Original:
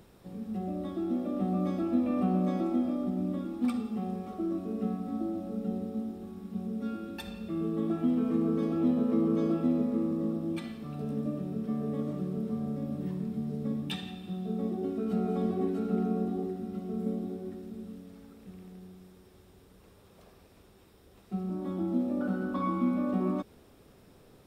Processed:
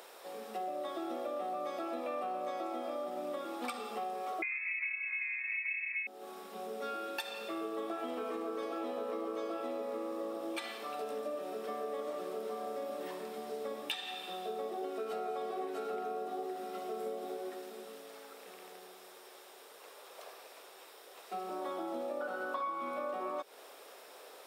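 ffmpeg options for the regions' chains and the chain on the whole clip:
-filter_complex "[0:a]asettb=1/sr,asplit=3[a][b][c];[a]atrim=end=4.424[d];[b]atrim=start=4.42:end=6.07,asetpts=PTS-STARTPTS,afade=t=in:d=0.004:c=qsin,afade=t=out:st=1.646:d=0.004:c=qsin,aecho=1:1:5:0.49,atrim=end_sample=72765,aeval=exprs='val(0)*sin(2*PI*190*n/s)':c=same,lowpass=f=2.2k:t=q:w=0.5098,lowpass=f=2.2k:t=q:w=0.6013,lowpass=f=2.2k:t=q:w=0.9,lowpass=f=2.2k:t=q:w=2.563,afreqshift=-2600[e];[c]atrim=start=6.066[f];[d][e]acrossfade=d=0.004:c1=hsin:c2=qsin[g];[g][f]acrossfade=d=0.004:c1=qsin:c2=hsin,highpass=f=510:w=0.5412,highpass=f=510:w=1.3066,acompressor=threshold=-46dB:ratio=6,volume=10.5dB"

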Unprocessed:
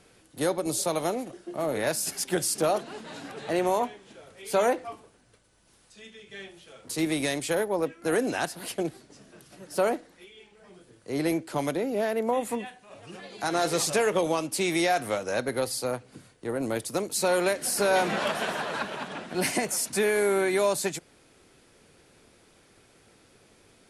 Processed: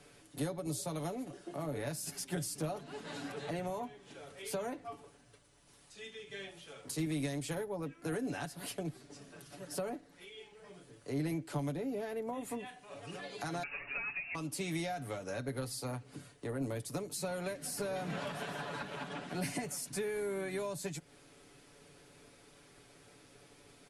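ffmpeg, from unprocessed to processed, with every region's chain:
-filter_complex "[0:a]asettb=1/sr,asplit=3[a][b][c];[a]atrim=end=13.634[d];[b]atrim=start=13.63:end=14.35,asetpts=PTS-STARTPTS,afade=t=in:d=0.004:c=qsin,afade=t=out:st=0.716:d=0.004:c=qsin,aeval=exprs='val(0)+0.5*0.0141*sgn(val(0))':c=same,highpass=360,lowpass=f=2.6k:t=q:w=0.5098,lowpass=f=2.6k:t=q:w=0.6013,lowpass=f=2.6k:t=q:w=0.9,lowpass=f=2.6k:t=q:w=2.563,afreqshift=-3000[e];[c]atrim=start=14.346[f];[d][e]acrossfade=d=0.004:c1=hsin:c2=qsin[g];[g][f]acrossfade=d=0.004:c1=qsin:c2=hsin,aecho=1:1:7:0.59,acrossover=split=210[h][i];[i]acompressor=threshold=-38dB:ratio=4[j];[h][j]amix=inputs=2:normalize=0,volume=-2.5dB"

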